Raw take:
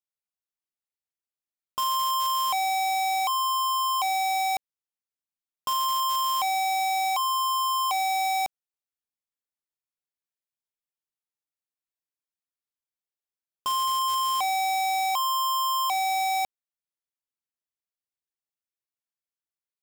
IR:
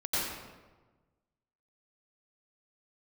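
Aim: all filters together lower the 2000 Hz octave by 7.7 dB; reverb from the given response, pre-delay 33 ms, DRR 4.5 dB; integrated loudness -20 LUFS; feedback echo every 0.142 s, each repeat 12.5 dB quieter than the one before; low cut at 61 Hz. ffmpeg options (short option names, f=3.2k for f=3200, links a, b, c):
-filter_complex "[0:a]highpass=61,equalizer=f=2k:t=o:g=-9,aecho=1:1:142|284|426:0.237|0.0569|0.0137,asplit=2[a][b];[1:a]atrim=start_sample=2205,adelay=33[c];[b][c]afir=irnorm=-1:irlink=0,volume=-13dB[d];[a][d]amix=inputs=2:normalize=0,volume=7dB"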